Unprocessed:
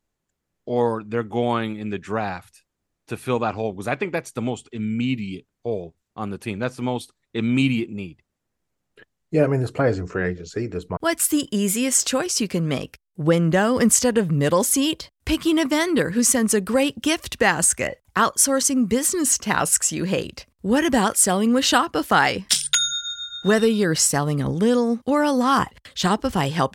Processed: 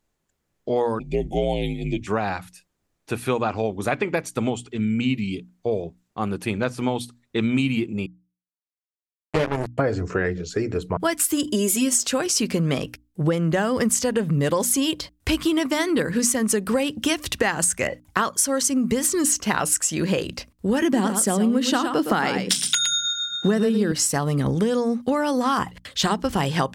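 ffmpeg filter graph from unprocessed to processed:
ffmpeg -i in.wav -filter_complex "[0:a]asettb=1/sr,asplit=3[link_01][link_02][link_03];[link_01]atrim=end=0.994[link_04];[link_02]atrim=start=0.99:end=2.07,asetpts=PTS-STARTPTS,afade=type=in:duration=0.004:curve=qsin,afade=type=out:start_time=1.076:duration=0.004:curve=qsin,aecho=1:1:7:0.35,atrim=end_sample=47628,afreqshift=-64,asuperstop=centerf=1300:order=8:qfactor=0.94[link_05];[link_03]atrim=start=2.066[link_06];[link_04][link_05]acrossfade=duration=0.004:curve1=hsin:curve2=qsin[link_07];[link_07][link_06]acrossfade=duration=0.004:curve1=qsin:curve2=hsin,asettb=1/sr,asplit=3[link_08][link_09][link_10];[link_08]atrim=end=8.064[link_11];[link_09]atrim=start=8.06:end=9.78,asetpts=PTS-STARTPTS,afade=type=in:duration=0.004:curve=qsin,afade=type=out:start_time=1.716:duration=0.004:curve=qsin,asubboost=boost=4:cutoff=110,acrusher=bits=2:mix=0:aa=0.5[link_12];[link_10]atrim=start=9.776[link_13];[link_11][link_12]acrossfade=duration=0.004:curve1=hsin:curve2=qsin[link_14];[link_14][link_13]acrossfade=duration=0.004:curve1=qsin:curve2=hsin,asettb=1/sr,asplit=3[link_15][link_16][link_17];[link_15]atrim=end=11.444[link_18];[link_16]atrim=start=11.44:end=12.03,asetpts=PTS-STARTPTS,afade=type=in:duration=0.004:curve=qsin,afade=type=out:start_time=0.586:duration=0.004:curve=qsin,highpass=44,equalizer=frequency=1800:width=1.2:gain=-7,aecho=1:1:3.1:0.95,atrim=end_sample=26019[link_19];[link_17]atrim=start=12.026[link_20];[link_18][link_19]acrossfade=duration=0.004:curve1=hsin:curve2=qsin[link_21];[link_21][link_20]acrossfade=duration=0.004:curve1=qsin:curve2=hsin,asettb=1/sr,asplit=3[link_22][link_23][link_24];[link_22]atrim=end=20.824[link_25];[link_23]atrim=start=20.82:end=23.92,asetpts=PTS-STARTPTS,afade=type=in:duration=0.004:curve=qsin,afade=type=out:start_time=3.096:duration=0.004:curve=qsin,highpass=150,equalizer=frequency=220:width_type=o:width=1.8:gain=9.5,aecho=1:1:113:0.355,atrim=end_sample=136710[link_26];[link_24]atrim=start=23.916[link_27];[link_25][link_26]acrossfade=duration=0.004:curve1=hsin:curve2=qsin[link_28];[link_28][link_27]acrossfade=duration=0.004:curve1=qsin:curve2=hsin,bandreject=frequency=60:width_type=h:width=6,bandreject=frequency=120:width_type=h:width=6,bandreject=frequency=180:width_type=h:width=6,bandreject=frequency=240:width_type=h:width=6,bandreject=frequency=300:width_type=h:width=6,acompressor=threshold=-22dB:ratio=6,volume=4dB" out.wav

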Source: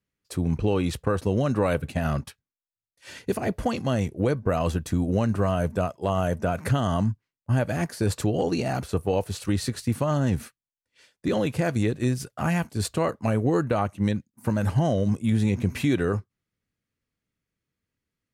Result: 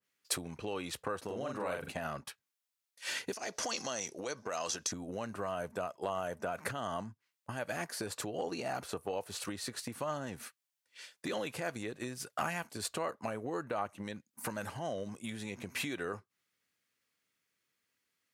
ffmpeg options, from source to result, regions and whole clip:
ffmpeg -i in.wav -filter_complex "[0:a]asettb=1/sr,asplit=3[link_01][link_02][link_03];[link_01]atrim=end=1.244[link_04];[link_02]atrim=start=1.24:end=1.92,asetpts=PTS-STARTPTS,afade=type=in:duration=0.004:curve=qsin,afade=type=out:start_time=0.676:duration=0.004:curve=qsin,acompressor=threshold=-23dB:ratio=6:attack=3.2:release=140:knee=1:detection=peak,asplit=2[link_05][link_06];[link_06]adelay=44,volume=-3dB[link_07];[link_05][link_07]amix=inputs=2:normalize=0,atrim=end_sample=29988[link_08];[link_03]atrim=start=1.916[link_09];[link_04][link_08]acrossfade=duration=0.004:curve1=hsin:curve2=qsin[link_10];[link_10][link_09]acrossfade=duration=0.004:curve1=qsin:curve2=hsin,asettb=1/sr,asplit=3[link_11][link_12][link_13];[link_11]atrim=end=3.334[link_14];[link_12]atrim=start=3.33:end=4.92,asetpts=PTS-STARTPTS,afade=type=in:duration=0.004:curve=qsin,afade=type=out:start_time=1.586:duration=0.004:curve=qsin,aemphasis=mode=production:type=bsi,acompressor=threshold=-33dB:ratio=5:attack=3.2:release=140:knee=1:detection=peak,lowpass=frequency=5800:width_type=q:width=4.8[link_15];[link_13]atrim=start=4.916[link_16];[link_14][link_15]acrossfade=duration=0.004:curve1=hsin:curve2=qsin[link_17];[link_17][link_16]acrossfade=duration=0.004:curve1=qsin:curve2=hsin,acompressor=threshold=-32dB:ratio=6,highpass=frequency=1200:poles=1,adynamicequalizer=threshold=0.00112:dfrequency=1600:dqfactor=0.7:tfrequency=1600:tqfactor=0.7:attack=5:release=100:ratio=0.375:range=3.5:mode=cutabove:tftype=highshelf,volume=7.5dB" out.wav

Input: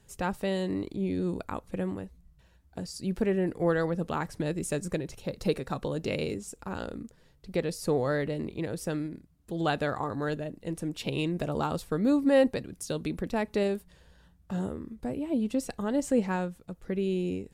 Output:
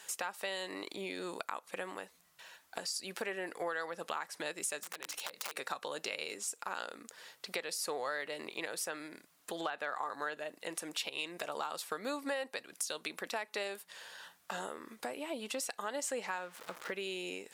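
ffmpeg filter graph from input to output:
ffmpeg -i in.wav -filter_complex "[0:a]asettb=1/sr,asplit=3[link_01][link_02][link_03];[link_01]atrim=end=4.834[link_04];[link_02]atrim=start=4.83:end=5.57,asetpts=PTS-STARTPTS,afade=type=in:duration=0.004:curve=qsin,afade=type=out:start_time=0.736:duration=0.004:curve=qsin,bandreject=frequency=60:width_type=h:width=6,bandreject=frequency=120:width_type=h:width=6,bandreject=frequency=180:width_type=h:width=6,bandreject=frequency=240:width_type=h:width=6,bandreject=frequency=300:width_type=h:width=6,acompressor=threshold=-41dB:ratio=12:attack=3.2:release=140:knee=1:detection=peak,aeval=exprs='(mod(79.4*val(0)+1,2)-1)/79.4':channel_layout=same[link_05];[link_03]atrim=start=5.566[link_06];[link_04][link_05]acrossfade=duration=0.004:curve1=hsin:curve2=qsin[link_07];[link_07][link_06]acrossfade=duration=0.004:curve1=qsin:curve2=hsin,asettb=1/sr,asplit=3[link_08][link_09][link_10];[link_08]atrim=end=8.864[link_11];[link_09]atrim=start=8.86:end=10.77,asetpts=PTS-STARTPTS,afade=type=in:duration=0.004:curve=qsin,afade=type=out:start_time=1.906:duration=0.004:curve=qsin,acrossover=split=2800[link_12][link_13];[link_13]acompressor=threshold=-54dB:ratio=4:attack=1:release=60[link_14];[link_12][link_14]amix=inputs=2:normalize=0,asoftclip=type=hard:threshold=-17.5dB[link_15];[link_10]atrim=start=10.766[link_16];[link_11][link_15]acrossfade=duration=0.004:curve1=hsin:curve2=qsin[link_17];[link_17][link_16]acrossfade=duration=0.004:curve1=qsin:curve2=hsin,asettb=1/sr,asplit=3[link_18][link_19][link_20];[link_18]atrim=end=16.384[link_21];[link_19]atrim=start=16.38:end=16.92,asetpts=PTS-STARTPTS,afade=type=in:duration=0.004:curve=qsin,afade=type=out:start_time=0.536:duration=0.004:curve=qsin,aeval=exprs='val(0)+0.5*0.00562*sgn(val(0))':channel_layout=same,highshelf=frequency=3600:gain=-10.5,bandreject=frequency=750:width=12[link_22];[link_20]atrim=start=16.916[link_23];[link_21][link_22]acrossfade=duration=0.004:curve1=hsin:curve2=qsin[link_24];[link_24][link_23]acrossfade=duration=0.004:curve1=qsin:curve2=hsin,highpass=980,alimiter=level_in=1.5dB:limit=-24dB:level=0:latency=1:release=250,volume=-1.5dB,acompressor=threshold=-56dB:ratio=3,volume=16dB" out.wav

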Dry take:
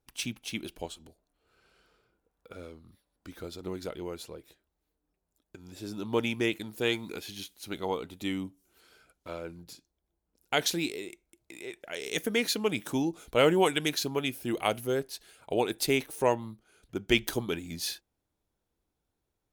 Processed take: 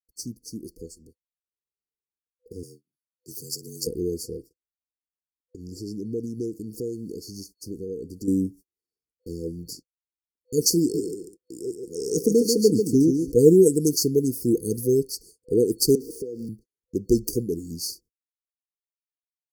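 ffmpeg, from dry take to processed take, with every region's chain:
ffmpeg -i in.wav -filter_complex "[0:a]asettb=1/sr,asplit=3[link_01][link_02][link_03];[link_01]atrim=end=2.634[link_04];[link_02]atrim=start=2.63:end=3.87,asetpts=PTS-STARTPTS,afade=type=in:duration=0.004:curve=qsin,afade=type=out:start_time=1.236:duration=0.004:curve=qsin,bass=frequency=250:gain=-6,treble=frequency=4000:gain=10,acrossover=split=120|3000[link_05][link_06][link_07];[link_06]acompressor=threshold=-51dB:ratio=10:attack=3.2:release=140:knee=2.83:detection=peak[link_08];[link_05][link_08][link_07]amix=inputs=3:normalize=0,afreqshift=53[link_09];[link_03]atrim=start=3.866[link_10];[link_04][link_09]acrossfade=duration=0.004:curve1=hsin:curve2=qsin[link_11];[link_11][link_10]acrossfade=duration=0.004:curve1=qsin:curve2=hsin,asettb=1/sr,asplit=3[link_12][link_13][link_14];[link_12]atrim=end=4.374[link_15];[link_13]atrim=start=4.37:end=8.28,asetpts=PTS-STARTPTS,afade=type=in:duration=0.004:curve=qsin,afade=type=out:start_time=3.906:duration=0.004:curve=qsin,highshelf=frequency=8300:gain=-9,acompressor=threshold=-46dB:ratio=2:attack=3.2:release=140:knee=1:detection=peak[link_16];[link_14]atrim=start=8.276[link_17];[link_15][link_16]acrossfade=duration=0.004:curve1=hsin:curve2=qsin[link_18];[link_18][link_17]acrossfade=duration=0.004:curve1=qsin:curve2=hsin,asettb=1/sr,asplit=3[link_19][link_20][link_21];[link_19]atrim=end=10.804[link_22];[link_20]atrim=start=10.8:end=13.32,asetpts=PTS-STARTPTS,afade=type=in:duration=0.004:curve=qsin,afade=type=out:start_time=2.516:duration=0.004:curve=qsin,highshelf=frequency=7500:gain=-7,aecho=1:1:141|282|423:0.501|0.115|0.0265,atrim=end_sample=111132[link_23];[link_21]atrim=start=13.316[link_24];[link_22][link_23]acrossfade=duration=0.004:curve1=hsin:curve2=qsin[link_25];[link_25][link_24]acrossfade=duration=0.004:curve1=qsin:curve2=hsin,asettb=1/sr,asplit=3[link_26][link_27][link_28];[link_26]atrim=end=15.954[link_29];[link_27]atrim=start=15.95:end=16.49,asetpts=PTS-STARTPTS,afade=type=in:duration=0.004:curve=qsin,afade=type=out:start_time=0.536:duration=0.004:curve=qsin,aeval=exprs='val(0)+0.5*0.0188*sgn(val(0))':channel_layout=same,acrossover=split=260 3300:gain=0.224 1 0.158[link_30][link_31][link_32];[link_30][link_31][link_32]amix=inputs=3:normalize=0,acompressor=threshold=-34dB:ratio=5:attack=3.2:release=140:knee=1:detection=peak[link_33];[link_28]atrim=start=16.486[link_34];[link_29][link_33]acrossfade=duration=0.004:curve1=hsin:curve2=qsin[link_35];[link_35][link_34]acrossfade=duration=0.004:curve1=qsin:curve2=hsin,agate=range=-42dB:threshold=-53dB:ratio=16:detection=peak,afftfilt=real='re*(1-between(b*sr/4096,500,4400))':imag='im*(1-between(b*sr/4096,500,4400))':win_size=4096:overlap=0.75,dynaudnorm=framelen=150:gausssize=31:maxgain=10dB,volume=1.5dB" out.wav

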